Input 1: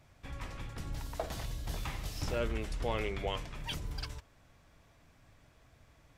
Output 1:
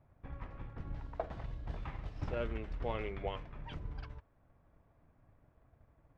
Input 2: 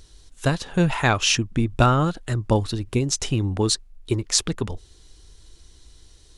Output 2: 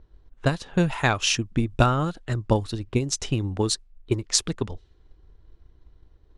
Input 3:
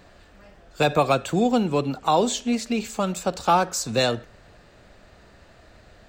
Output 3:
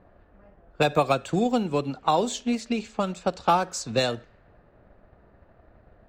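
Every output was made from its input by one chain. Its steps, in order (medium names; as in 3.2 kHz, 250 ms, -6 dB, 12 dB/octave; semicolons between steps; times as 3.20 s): level-controlled noise filter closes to 1.1 kHz, open at -19 dBFS; transient shaper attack +4 dB, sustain -2 dB; trim -4 dB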